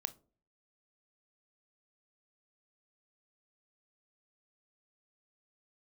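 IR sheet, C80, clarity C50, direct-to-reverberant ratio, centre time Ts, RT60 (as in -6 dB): 27.0 dB, 20.5 dB, 12.5 dB, 3 ms, not exponential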